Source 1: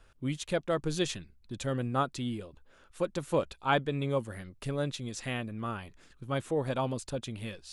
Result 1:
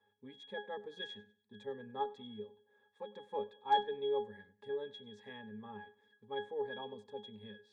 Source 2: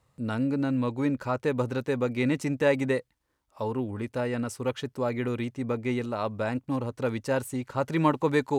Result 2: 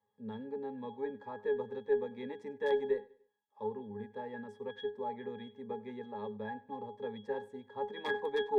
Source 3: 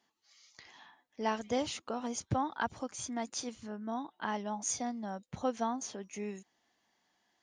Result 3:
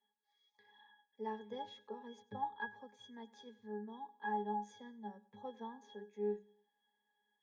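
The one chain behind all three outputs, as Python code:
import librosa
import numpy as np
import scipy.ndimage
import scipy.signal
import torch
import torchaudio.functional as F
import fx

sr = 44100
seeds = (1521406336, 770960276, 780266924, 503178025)

p1 = (np.mod(10.0 ** (13.5 / 20.0) * x + 1.0, 2.0) - 1.0) / 10.0 ** (13.5 / 20.0)
p2 = scipy.signal.sosfilt(scipy.signal.butter(2, 410.0, 'highpass', fs=sr, output='sos'), p1)
p3 = fx.octave_resonator(p2, sr, note='G#', decay_s=0.24)
p4 = fx.cheby_harmonics(p3, sr, harmonics=(4,), levels_db=(-37,), full_scale_db=-28.5)
p5 = p4 + fx.echo_feedback(p4, sr, ms=98, feedback_pct=37, wet_db=-21.0, dry=0)
y = p5 * 10.0 ** (9.5 / 20.0)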